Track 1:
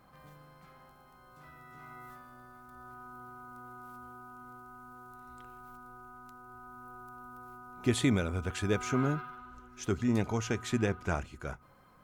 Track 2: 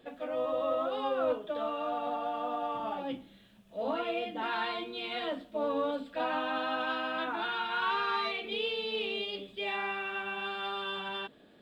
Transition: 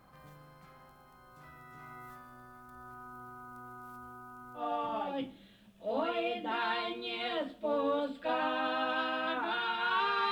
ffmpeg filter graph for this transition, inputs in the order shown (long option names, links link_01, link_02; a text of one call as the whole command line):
ffmpeg -i cue0.wav -i cue1.wav -filter_complex "[0:a]apad=whole_dur=10.31,atrim=end=10.31,atrim=end=4.66,asetpts=PTS-STARTPTS[link_01];[1:a]atrim=start=2.45:end=8.22,asetpts=PTS-STARTPTS[link_02];[link_01][link_02]acrossfade=duration=0.12:curve1=tri:curve2=tri" out.wav